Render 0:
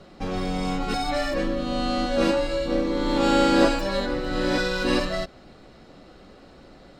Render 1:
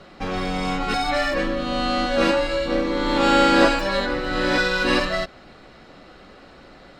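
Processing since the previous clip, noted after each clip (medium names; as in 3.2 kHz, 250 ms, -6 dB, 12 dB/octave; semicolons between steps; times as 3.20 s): peaking EQ 1.8 kHz +7.5 dB 2.5 oct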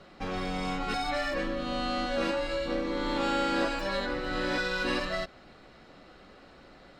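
compression 2.5:1, threshold -20 dBFS, peak gain reduction 7 dB; trim -7 dB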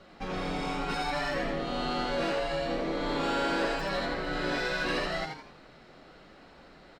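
in parallel at -3 dB: hard clipper -24.5 dBFS, distortion -18 dB; on the sum: flange 0.76 Hz, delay 3.3 ms, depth 5.2 ms, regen -65%; frequency-shifting echo 83 ms, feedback 37%, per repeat +130 Hz, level -5 dB; trim -2 dB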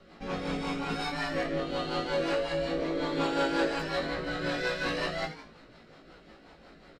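rotary cabinet horn 5.5 Hz; doubling 18 ms -3 dB; resampled via 32 kHz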